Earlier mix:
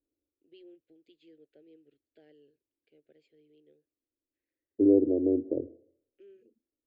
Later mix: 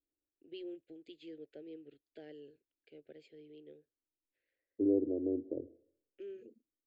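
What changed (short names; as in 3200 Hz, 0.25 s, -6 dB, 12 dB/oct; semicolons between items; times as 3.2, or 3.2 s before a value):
first voice +8.5 dB; second voice -8.5 dB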